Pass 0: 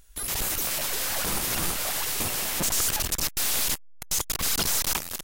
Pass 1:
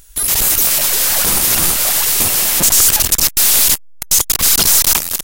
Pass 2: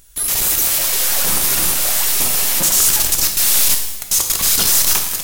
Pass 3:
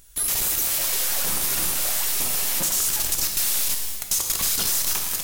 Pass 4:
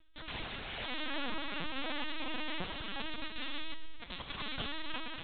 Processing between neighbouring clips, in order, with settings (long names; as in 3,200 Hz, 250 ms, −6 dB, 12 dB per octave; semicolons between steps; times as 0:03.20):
high-shelf EQ 4,500 Hz +8 dB; level +9 dB
low-shelf EQ 180 Hz −3 dB; reverb with rising layers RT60 1 s, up +12 semitones, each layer −8 dB, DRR 3.5 dB; level −4.5 dB
downward compressor, threshold −16 dBFS, peak gain reduction 6.5 dB; level −3.5 dB
linear-prediction vocoder at 8 kHz pitch kept; level −7.5 dB